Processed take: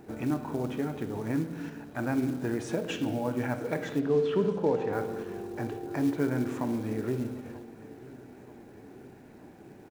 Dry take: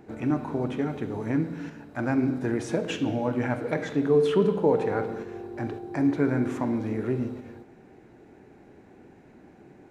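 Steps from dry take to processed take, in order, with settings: band-stop 2.1 kHz, Q 23; in parallel at -0.5 dB: compression 16:1, threshold -35 dBFS, peak gain reduction 19.5 dB; on the sum: companded quantiser 6-bit; 3.99–4.93 s: distance through air 130 m; on a send: feedback delay 935 ms, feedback 58%, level -20 dB; on the sum: trim -5.5 dB

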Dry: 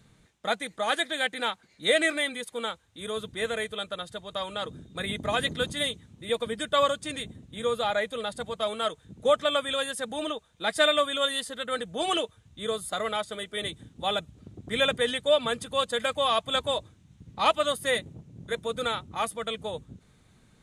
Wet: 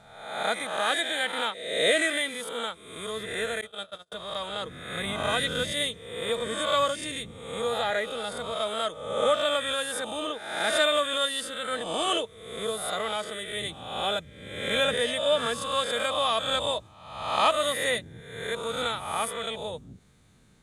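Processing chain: reverse spectral sustain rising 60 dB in 0.88 s; treble shelf 6.9 kHz +3.5 dB; 3.61–4.12 s: gate -29 dBFS, range -39 dB; trim -3 dB

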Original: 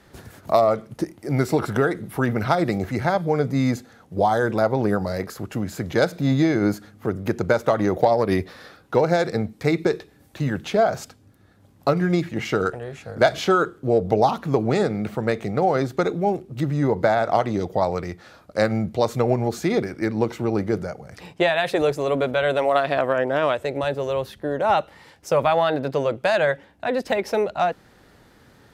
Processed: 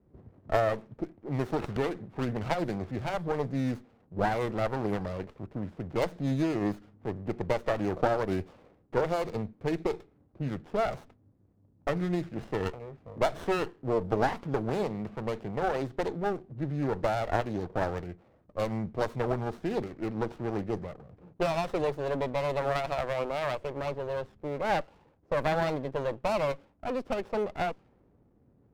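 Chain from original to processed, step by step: dynamic bell 960 Hz, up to +3 dB, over -33 dBFS, Q 2.4; level-controlled noise filter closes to 420 Hz, open at -15.5 dBFS; sliding maximum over 17 samples; trim -8.5 dB

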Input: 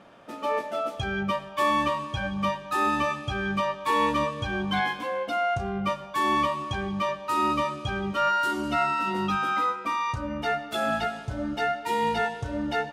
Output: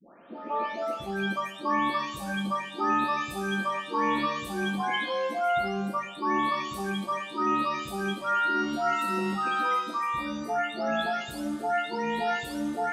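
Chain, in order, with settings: delay that grows with frequency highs late, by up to 586 ms; resonant low shelf 160 Hz -11 dB, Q 1.5

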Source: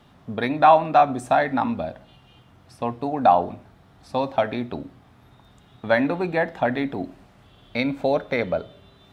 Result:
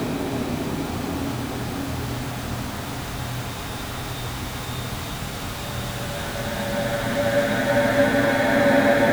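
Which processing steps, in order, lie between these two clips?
jump at every zero crossing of -29 dBFS; Paulstretch 8.6×, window 1.00 s, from 4.84 s; trim +4.5 dB

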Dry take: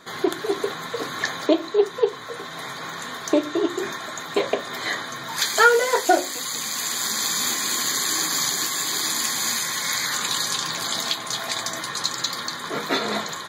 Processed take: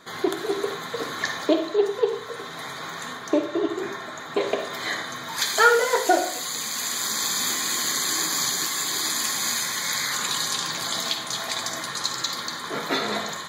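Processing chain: 3.13–4.41 s: treble shelf 3.4 kHz -8.5 dB; reverberation RT60 0.50 s, pre-delay 44 ms, DRR 7 dB; trim -2 dB

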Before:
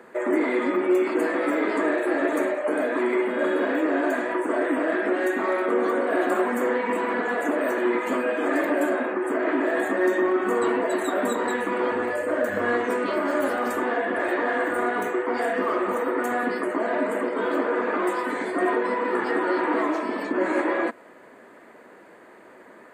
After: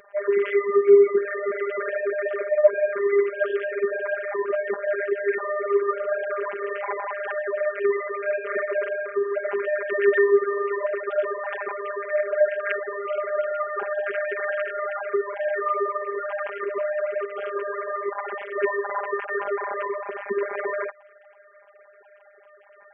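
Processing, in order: formants replaced by sine waves; robot voice 201 Hz; trim +1.5 dB

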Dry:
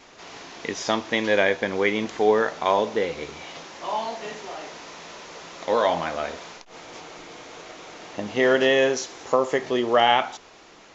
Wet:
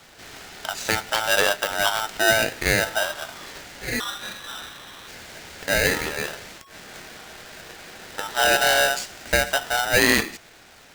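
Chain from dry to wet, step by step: 4.00–5.08 s: frequency inversion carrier 3.2 kHz; polarity switched at an audio rate 1.1 kHz

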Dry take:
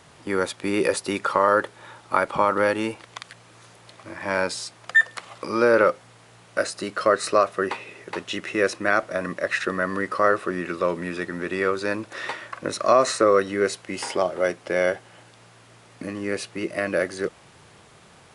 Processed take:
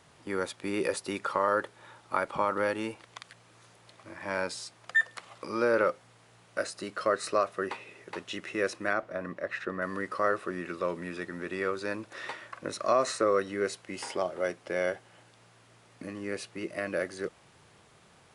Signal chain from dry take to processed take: 8.93–9.82 s: low-pass 1.8 kHz 6 dB/octave; trim -8 dB

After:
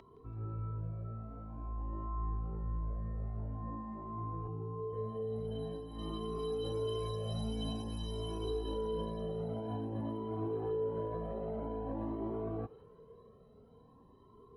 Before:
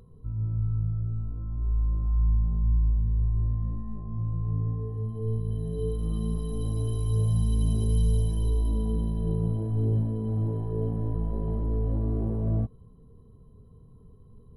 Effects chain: high-pass 74 Hz 6 dB/octave; three-band isolator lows -21 dB, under 290 Hz, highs -19 dB, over 4.9 kHz; peak limiter -37 dBFS, peak gain reduction 10 dB; 4.47–4.93 s: static phaser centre 350 Hz, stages 8; thinning echo 166 ms, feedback 78%, high-pass 1 kHz, level -16 dB; Shepard-style flanger rising 0.49 Hz; trim +11.5 dB

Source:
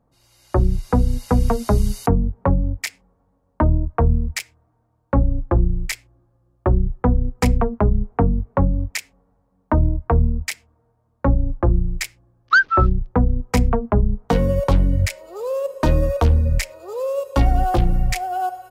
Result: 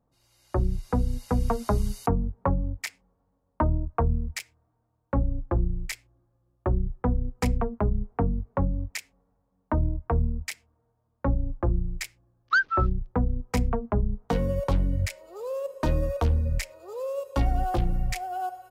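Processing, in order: 1.39–4.03 s: dynamic bell 1.1 kHz, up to +5 dB, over -35 dBFS, Q 0.93; trim -8 dB

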